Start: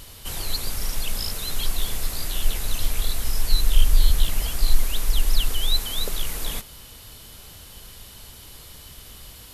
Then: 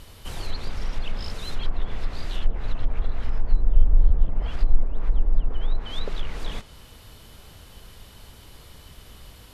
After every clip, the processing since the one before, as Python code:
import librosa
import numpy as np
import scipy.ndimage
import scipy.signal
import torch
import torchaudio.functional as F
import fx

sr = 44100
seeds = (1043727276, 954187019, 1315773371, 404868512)

y = fx.high_shelf(x, sr, hz=3600.0, db=-10.5)
y = fx.env_lowpass_down(y, sr, base_hz=740.0, full_db=-13.0)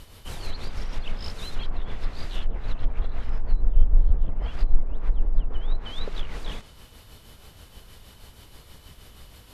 y = x * (1.0 - 0.43 / 2.0 + 0.43 / 2.0 * np.cos(2.0 * np.pi * 6.3 * (np.arange(len(x)) / sr)))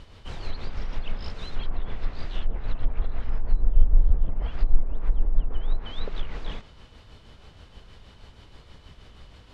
y = fx.air_absorb(x, sr, metres=120.0)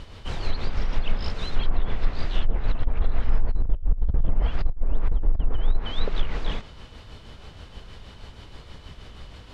y = fx.over_compress(x, sr, threshold_db=-19.0, ratio=-0.5)
y = y * librosa.db_to_amplitude(3.5)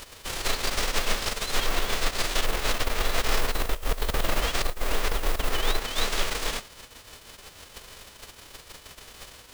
y = fx.envelope_flatten(x, sr, power=0.3)
y = 10.0 ** (-5.5 / 20.0) * np.tanh(y / 10.0 ** (-5.5 / 20.0))
y = y * librosa.db_to_amplitude(-5.5)